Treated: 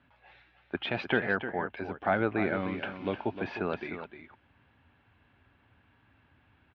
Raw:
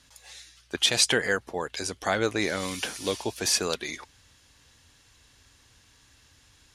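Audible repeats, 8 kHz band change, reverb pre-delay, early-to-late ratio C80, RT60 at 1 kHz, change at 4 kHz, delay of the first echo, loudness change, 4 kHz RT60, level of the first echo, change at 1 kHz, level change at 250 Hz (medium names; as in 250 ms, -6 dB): 1, under -40 dB, no reverb, no reverb, no reverb, -16.5 dB, 305 ms, -5.5 dB, no reverb, -10.0 dB, 0.0 dB, +0.5 dB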